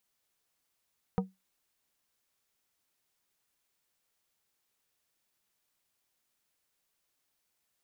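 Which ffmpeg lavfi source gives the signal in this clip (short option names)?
-f lavfi -i "aevalsrc='0.075*pow(10,-3*t/0.2)*sin(2*PI*189*t)+0.0473*pow(10,-3*t/0.105)*sin(2*PI*472.5*t)+0.0299*pow(10,-3*t/0.076)*sin(2*PI*756*t)+0.0188*pow(10,-3*t/0.065)*sin(2*PI*945*t)+0.0119*pow(10,-3*t/0.054)*sin(2*PI*1228.5*t)':d=0.89:s=44100"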